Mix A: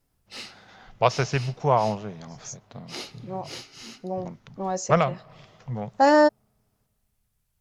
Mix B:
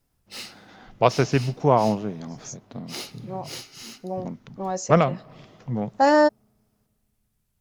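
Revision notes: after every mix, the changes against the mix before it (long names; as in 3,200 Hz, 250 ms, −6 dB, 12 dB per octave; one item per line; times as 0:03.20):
first voice: add parametric band 280 Hz +11.5 dB 1.1 octaves
background: remove high-frequency loss of the air 52 metres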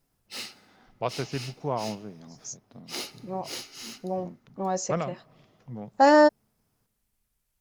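first voice −11.5 dB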